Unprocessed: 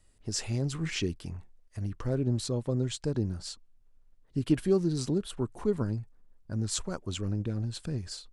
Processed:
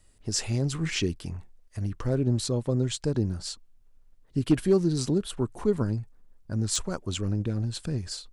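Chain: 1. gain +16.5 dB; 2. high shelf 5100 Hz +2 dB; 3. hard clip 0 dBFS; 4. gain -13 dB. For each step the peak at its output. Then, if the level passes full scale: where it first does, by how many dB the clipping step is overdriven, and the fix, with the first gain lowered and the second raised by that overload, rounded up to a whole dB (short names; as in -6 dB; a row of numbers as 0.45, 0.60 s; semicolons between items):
+3.0, +3.5, 0.0, -13.0 dBFS; step 1, 3.5 dB; step 1 +12.5 dB, step 4 -9 dB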